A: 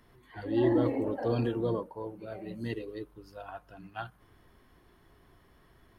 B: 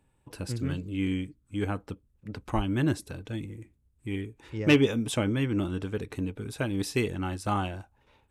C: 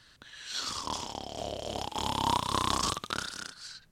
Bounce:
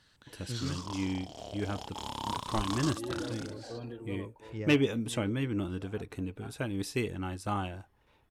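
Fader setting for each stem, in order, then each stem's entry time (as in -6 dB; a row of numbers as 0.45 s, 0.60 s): -12.5 dB, -4.5 dB, -7.5 dB; 2.45 s, 0.00 s, 0.00 s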